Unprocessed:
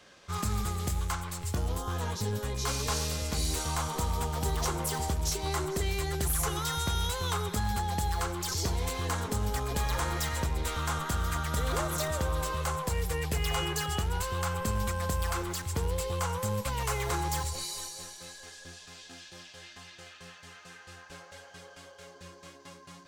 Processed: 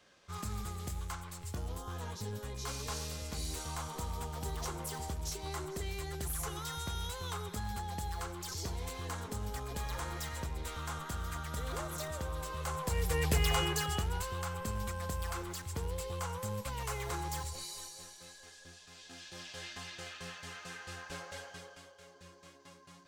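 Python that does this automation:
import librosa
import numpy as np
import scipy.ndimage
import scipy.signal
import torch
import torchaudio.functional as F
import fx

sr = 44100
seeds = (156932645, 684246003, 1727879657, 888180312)

y = fx.gain(x, sr, db=fx.line((12.48, -8.5), (13.3, 2.0), (14.46, -7.0), (18.86, -7.0), (19.57, 3.5), (21.4, 3.5), (21.95, -7.0)))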